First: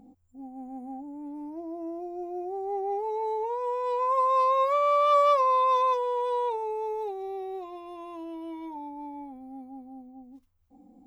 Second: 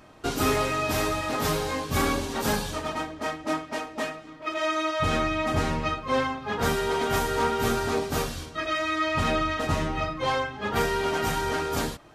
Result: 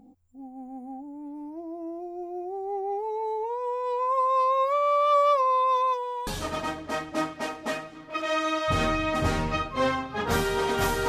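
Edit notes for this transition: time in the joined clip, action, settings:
first
5.31–6.27 s: high-pass 170 Hz -> 950 Hz
6.27 s: go over to second from 2.59 s

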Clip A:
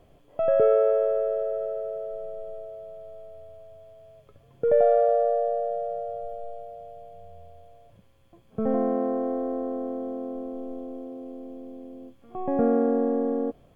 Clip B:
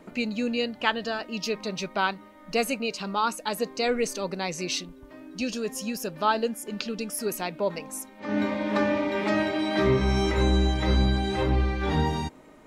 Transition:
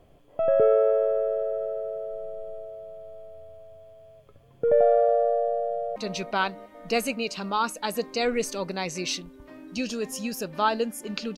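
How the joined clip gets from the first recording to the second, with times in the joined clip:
clip A
5.69–5.96 s: echo throw 350 ms, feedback 60%, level -10 dB
5.96 s: go over to clip B from 1.59 s

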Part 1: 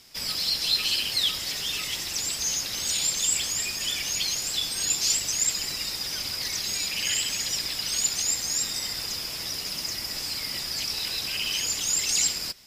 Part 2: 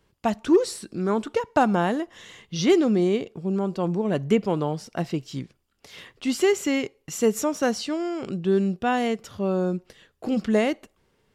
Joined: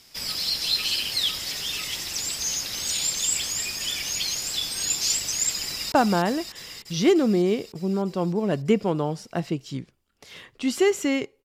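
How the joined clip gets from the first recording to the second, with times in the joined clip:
part 1
5.65–5.92 s: echo throw 300 ms, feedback 75%, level -5 dB
5.92 s: go over to part 2 from 1.54 s

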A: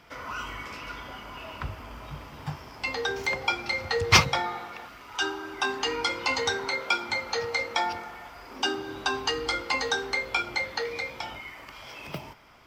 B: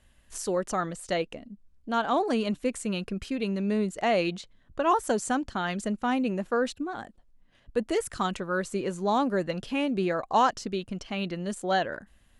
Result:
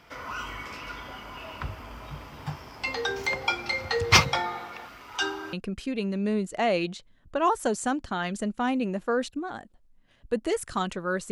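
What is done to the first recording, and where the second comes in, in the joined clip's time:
A
5.53 s: go over to B from 2.97 s

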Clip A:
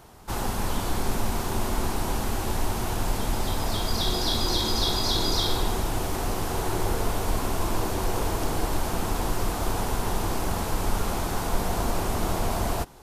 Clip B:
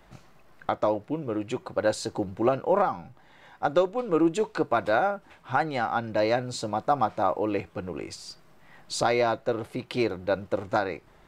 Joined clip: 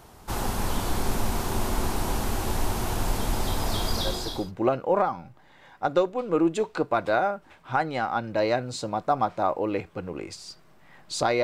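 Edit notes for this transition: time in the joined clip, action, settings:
clip A
4.20 s: go over to clip B from 2.00 s, crossfade 0.64 s linear

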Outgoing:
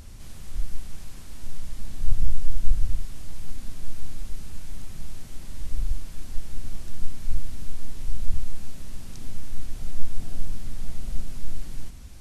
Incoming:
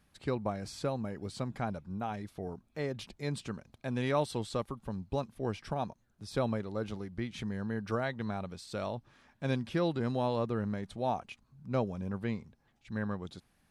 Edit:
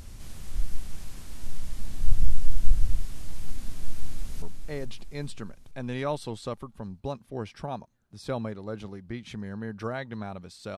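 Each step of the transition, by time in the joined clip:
outgoing
3.86–4.42 s: echo throw 430 ms, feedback 50%, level -7 dB
4.42 s: go over to incoming from 2.50 s

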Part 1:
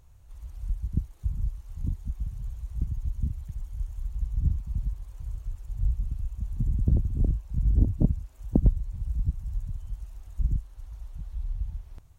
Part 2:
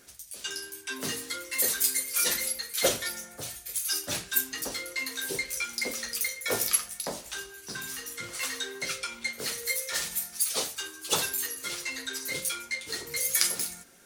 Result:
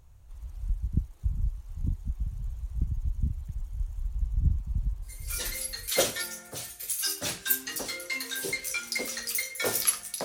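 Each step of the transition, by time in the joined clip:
part 1
5.47 s: go over to part 2 from 2.33 s, crossfade 0.90 s linear

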